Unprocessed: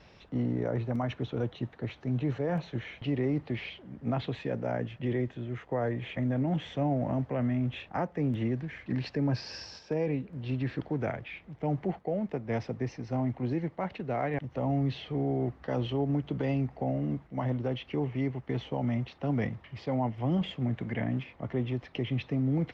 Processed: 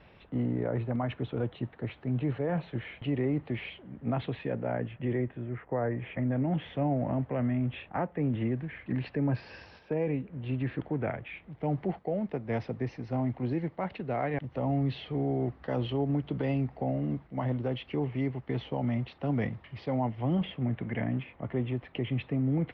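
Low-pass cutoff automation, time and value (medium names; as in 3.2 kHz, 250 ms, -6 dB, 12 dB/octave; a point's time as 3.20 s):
low-pass 24 dB/octave
4.57 s 3.4 kHz
5.73 s 2.1 kHz
6.56 s 3.2 kHz
11.28 s 3.2 kHz
11.68 s 4.6 kHz
20.09 s 4.6 kHz
20.49 s 3.3 kHz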